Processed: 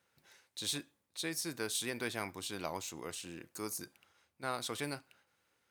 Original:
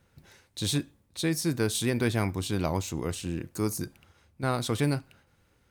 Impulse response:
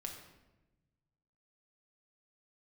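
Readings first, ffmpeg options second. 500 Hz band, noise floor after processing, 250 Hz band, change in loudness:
-11.0 dB, -80 dBFS, -14.5 dB, -10.0 dB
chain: -af "highpass=f=760:p=1,volume=0.562"

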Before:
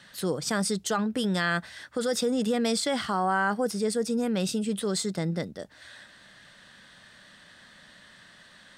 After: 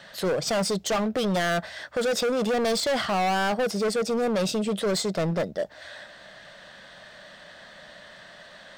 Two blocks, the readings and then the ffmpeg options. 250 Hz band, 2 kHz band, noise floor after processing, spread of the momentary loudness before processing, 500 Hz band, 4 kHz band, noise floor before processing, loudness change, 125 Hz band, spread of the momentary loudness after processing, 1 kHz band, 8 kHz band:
-0.5 dB, +1.5 dB, -48 dBFS, 9 LU, +4.5 dB, +3.0 dB, -54 dBFS, +2.0 dB, +1.0 dB, 21 LU, +2.5 dB, 0.0 dB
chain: -af "equalizer=f=100:t=o:w=0.67:g=-5,equalizer=f=250:t=o:w=0.67:g=-4,equalizer=f=630:t=o:w=0.67:g=11,equalizer=f=10000:t=o:w=0.67:g=-10,volume=22.4,asoftclip=hard,volume=0.0447,volume=1.78"

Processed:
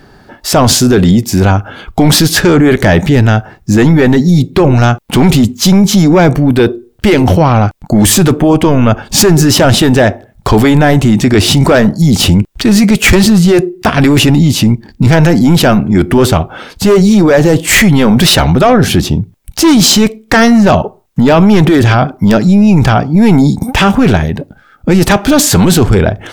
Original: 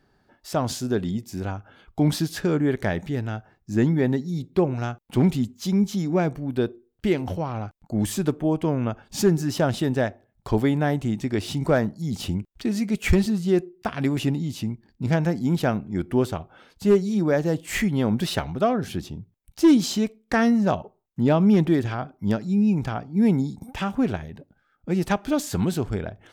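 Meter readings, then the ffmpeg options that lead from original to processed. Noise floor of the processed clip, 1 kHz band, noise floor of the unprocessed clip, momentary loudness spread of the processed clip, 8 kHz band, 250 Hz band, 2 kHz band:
-44 dBFS, +17.5 dB, -68 dBFS, 6 LU, +23.0 dB, +15.0 dB, +19.0 dB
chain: -af "apsyclip=20,volume=0.794"

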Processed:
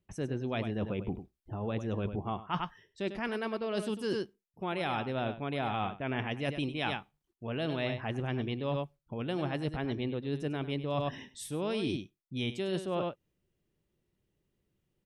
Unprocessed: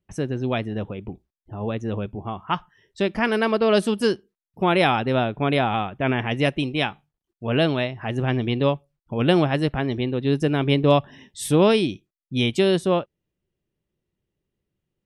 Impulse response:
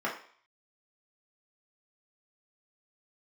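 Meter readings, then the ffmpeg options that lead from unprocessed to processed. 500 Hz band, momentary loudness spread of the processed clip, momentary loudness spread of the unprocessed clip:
-13.0 dB, 7 LU, 13 LU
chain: -af "aecho=1:1:99:0.237,areverse,acompressor=threshold=0.0282:ratio=12,areverse,volume=1.12"

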